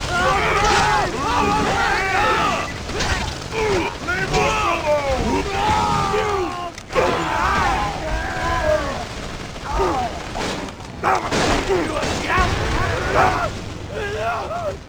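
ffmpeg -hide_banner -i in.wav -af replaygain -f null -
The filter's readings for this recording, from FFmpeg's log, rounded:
track_gain = +1.4 dB
track_peak = 0.443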